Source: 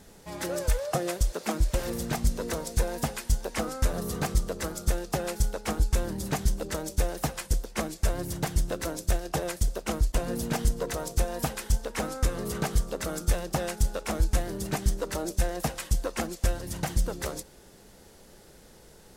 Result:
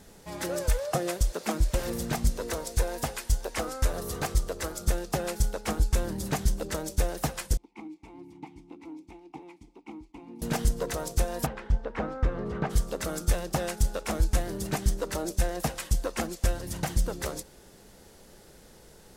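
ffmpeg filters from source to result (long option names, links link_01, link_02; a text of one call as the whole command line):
ffmpeg -i in.wav -filter_complex "[0:a]asettb=1/sr,asplit=3[link_01][link_02][link_03];[link_01]atrim=end=2.304[link_04];[link_02]atrim=start=2.3:end=4.81,asetpts=PTS-STARTPTS,afade=type=in:duration=0.004:curve=qsin,afade=type=out:start_time=2.506:duration=0.004:curve=qsin,equalizer=frequency=190:width_type=o:width=0.77:gain=-9[link_05];[link_03]atrim=start=4.806[link_06];[link_04][link_05]acrossfade=duration=0.004:curve1=hsin:curve2=qsin[link_07];[link_07][link_06]acrossfade=duration=0.004:curve1=qsin:curve2=hsin,asettb=1/sr,asplit=3[link_08][link_09][link_10];[link_08]atrim=end=7.574[link_11];[link_09]atrim=start=7.57:end=10.42,asetpts=PTS-STARTPTS,afade=type=in:duration=0.004:curve=qsin,afade=type=out:start_time=2.846:duration=0.004:curve=qsin,asplit=3[link_12][link_13][link_14];[link_12]bandpass=frequency=300:width_type=q:width=8,volume=0dB[link_15];[link_13]bandpass=frequency=870:width_type=q:width=8,volume=-6dB[link_16];[link_14]bandpass=frequency=2240:width_type=q:width=8,volume=-9dB[link_17];[link_15][link_16][link_17]amix=inputs=3:normalize=0[link_18];[link_10]atrim=start=10.416[link_19];[link_11][link_18]acrossfade=duration=0.004:curve1=hsin:curve2=qsin[link_20];[link_20][link_19]acrossfade=duration=0.004:curve1=qsin:curve2=hsin,asplit=3[link_21][link_22][link_23];[link_21]afade=type=out:start_time=11.45:duration=0.02[link_24];[link_22]lowpass=1900,afade=type=in:start_time=11.45:duration=0.02,afade=type=out:start_time=12.69:duration=0.02[link_25];[link_23]afade=type=in:start_time=12.69:duration=0.02[link_26];[link_24][link_25][link_26]amix=inputs=3:normalize=0" out.wav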